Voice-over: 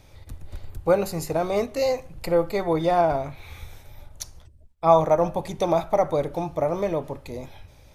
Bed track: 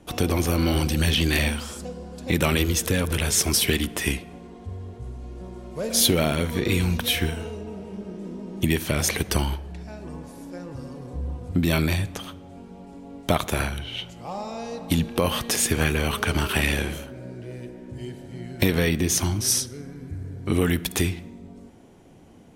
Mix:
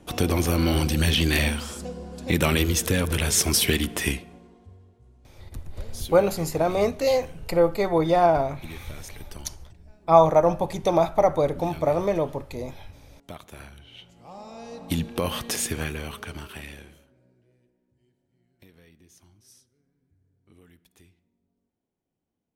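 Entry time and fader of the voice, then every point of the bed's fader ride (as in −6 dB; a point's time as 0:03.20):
5.25 s, +1.5 dB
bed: 0:04.05 0 dB
0:04.96 −19 dB
0:13.50 −19 dB
0:14.91 −4 dB
0:15.54 −4 dB
0:17.98 −33.5 dB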